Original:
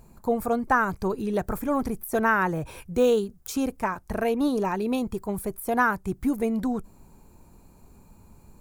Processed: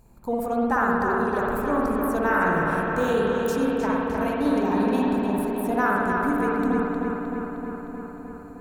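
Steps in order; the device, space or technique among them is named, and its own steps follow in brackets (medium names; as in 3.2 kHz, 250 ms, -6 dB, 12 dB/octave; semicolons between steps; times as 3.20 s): dub delay into a spring reverb (filtered feedback delay 309 ms, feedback 72%, low-pass 4.3 kHz, level -4 dB; spring tank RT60 1.6 s, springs 55 ms, chirp 45 ms, DRR -2.5 dB); trim -4 dB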